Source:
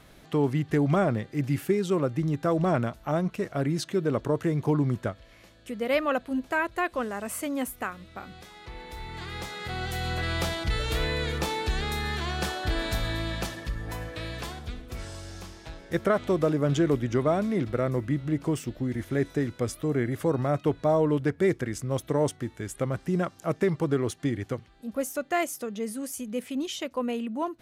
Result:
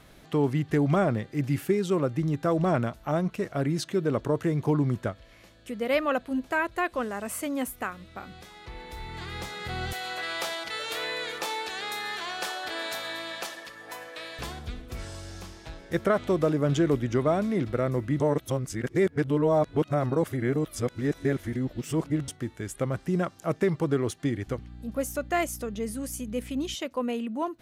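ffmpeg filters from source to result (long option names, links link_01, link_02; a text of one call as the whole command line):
ffmpeg -i in.wav -filter_complex "[0:a]asettb=1/sr,asplit=3[link_01][link_02][link_03];[link_01]atrim=end=9.934[link_04];[link_02]atrim=start=9.93:end=14.39,asetpts=PTS-STARTPTS,afade=type=in:duration=0.004:curve=qsin,afade=type=out:start_time=4.456:duration=0.004:curve=qsin,highpass=530[link_05];[link_03]atrim=start=14.386[link_06];[link_04][link_05]acrossfade=duration=0.004:curve1=hsin:curve2=qsin[link_07];[link_07][link_06]acrossfade=duration=0.004:curve1=qsin:curve2=hsin,asettb=1/sr,asplit=3[link_08][link_09][link_10];[link_08]atrim=end=24.474[link_11];[link_09]atrim=start=24.47:end=26.75,asetpts=PTS-STARTPTS,afade=type=in:duration=0.004:curve=qsin,afade=type=out:start_time=2.276:duration=0.004:curve=qsin,aeval=exprs='val(0)+0.00794*(sin(2*PI*60*n/s)+sin(2*PI*2*60*n/s)/2+sin(2*PI*3*60*n/s)/3+sin(2*PI*4*60*n/s)/4+sin(2*PI*5*60*n/s)/5)':channel_layout=same[link_12];[link_10]atrim=start=26.746[link_13];[link_11][link_12]acrossfade=duration=0.004:curve1=hsin:curve2=qsin[link_14];[link_14][link_13]acrossfade=duration=0.004:curve1=qsin:curve2=hsin,asplit=3[link_15][link_16][link_17];[link_15]atrim=end=18.202[link_18];[link_16]atrim=start=18.198:end=22.282,asetpts=PTS-STARTPTS,areverse[link_19];[link_17]atrim=start=22.278[link_20];[link_18][link_19]acrossfade=duration=0.004:curve1=hsin:curve2=hsin[link_21];[link_21][link_20]acrossfade=duration=0.004:curve1=hsin:curve2=hsin" out.wav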